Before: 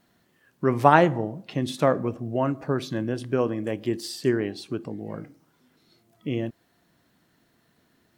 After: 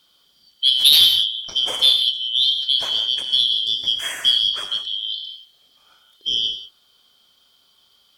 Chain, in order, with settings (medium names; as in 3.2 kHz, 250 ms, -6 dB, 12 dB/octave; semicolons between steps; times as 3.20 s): four frequency bands reordered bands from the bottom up 3412; sine folder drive 7 dB, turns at -1 dBFS; gated-style reverb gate 210 ms flat, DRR 4.5 dB; trim -5.5 dB